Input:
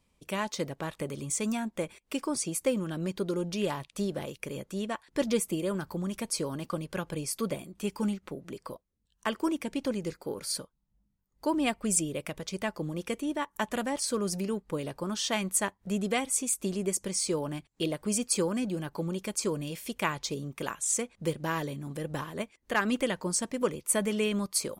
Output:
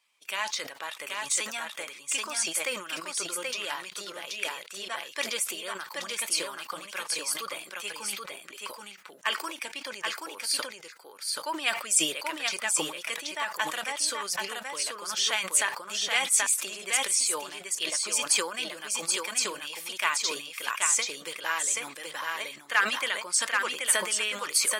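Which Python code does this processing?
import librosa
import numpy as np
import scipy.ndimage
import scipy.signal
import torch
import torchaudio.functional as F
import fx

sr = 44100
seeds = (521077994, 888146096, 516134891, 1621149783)

y = fx.spec_quant(x, sr, step_db=15)
y = scipy.signal.sosfilt(scipy.signal.butter(2, 1500.0, 'highpass', fs=sr, output='sos'), y)
y = fx.high_shelf(y, sr, hz=5600.0, db=-6.5)
y = y + 10.0 ** (-3.5 / 20.0) * np.pad(y, (int(780 * sr / 1000.0), 0))[:len(y)]
y = fx.sustainer(y, sr, db_per_s=94.0)
y = y * 10.0 ** (9.0 / 20.0)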